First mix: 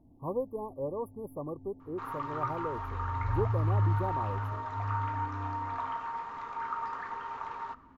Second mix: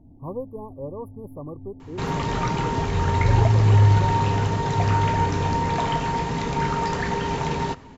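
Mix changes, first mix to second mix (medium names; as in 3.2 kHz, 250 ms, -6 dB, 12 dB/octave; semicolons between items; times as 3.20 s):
first sound +6.0 dB; second sound: remove band-pass filter 1.2 kHz, Q 6.1; master: add tone controls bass +6 dB, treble -2 dB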